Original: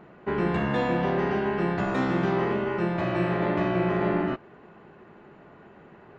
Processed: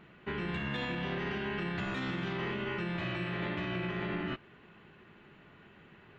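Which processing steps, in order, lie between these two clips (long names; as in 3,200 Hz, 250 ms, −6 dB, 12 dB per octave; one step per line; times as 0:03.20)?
drawn EQ curve 100 Hz 0 dB, 710 Hz −10 dB, 3,300 Hz +8 dB, 5,000 Hz 0 dB
brickwall limiter −24.5 dBFS, peak gain reduction 7 dB
level −2.5 dB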